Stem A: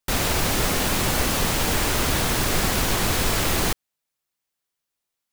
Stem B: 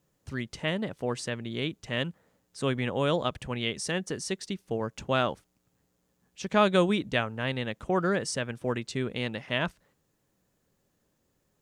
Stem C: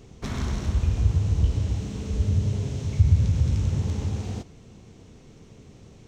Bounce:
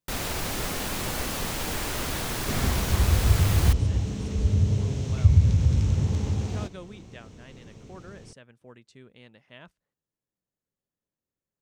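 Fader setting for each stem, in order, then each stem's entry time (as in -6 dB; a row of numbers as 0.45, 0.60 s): -8.0, -19.5, +1.0 dB; 0.00, 0.00, 2.25 s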